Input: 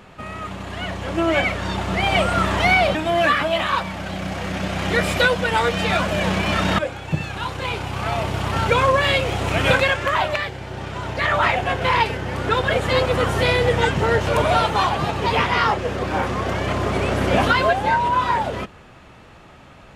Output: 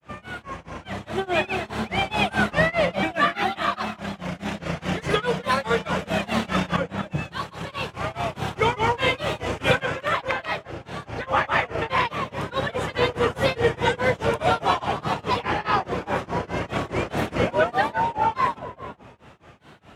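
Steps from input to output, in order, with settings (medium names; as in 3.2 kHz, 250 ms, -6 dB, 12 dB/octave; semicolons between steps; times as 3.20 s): high-pass 67 Hz; band-stop 4.3 kHz, Q 16; on a send: filtered feedback delay 215 ms, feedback 46%, low-pass 1.2 kHz, level -6 dB; on the sum: granulator 233 ms, grains 4.8 per s, pitch spread up and down by 3 st; trim -1.5 dB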